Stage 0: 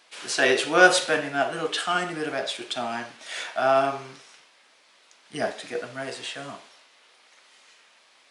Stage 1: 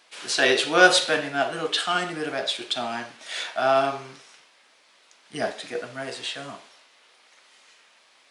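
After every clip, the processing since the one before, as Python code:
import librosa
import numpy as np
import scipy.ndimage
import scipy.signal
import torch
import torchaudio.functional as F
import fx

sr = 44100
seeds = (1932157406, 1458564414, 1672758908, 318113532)

y = fx.dynamic_eq(x, sr, hz=3900.0, q=2.0, threshold_db=-43.0, ratio=4.0, max_db=6)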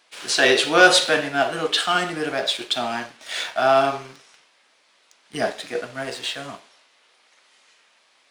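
y = fx.leveller(x, sr, passes=1)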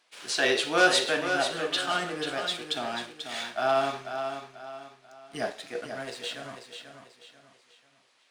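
y = fx.echo_feedback(x, sr, ms=489, feedback_pct=36, wet_db=-8.0)
y = F.gain(torch.from_numpy(y), -8.0).numpy()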